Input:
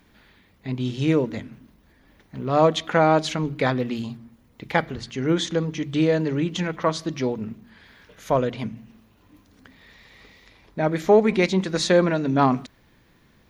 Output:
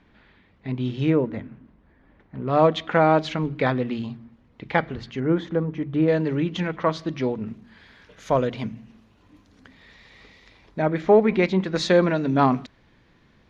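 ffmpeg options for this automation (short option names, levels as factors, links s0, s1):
-af "asetnsamples=n=441:p=0,asendcmd='1.1 lowpass f 1900;2.48 lowpass f 3400;5.2 lowpass f 1500;6.08 lowpass f 3600;7.47 lowpass f 7000;10.82 lowpass f 2900;11.76 lowpass f 5000',lowpass=3100"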